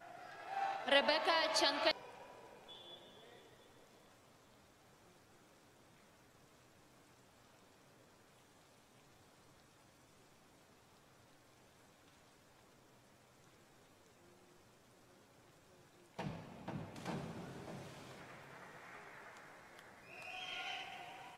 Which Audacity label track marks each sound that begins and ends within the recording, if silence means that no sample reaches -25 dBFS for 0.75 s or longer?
0.890000	1.910000	sound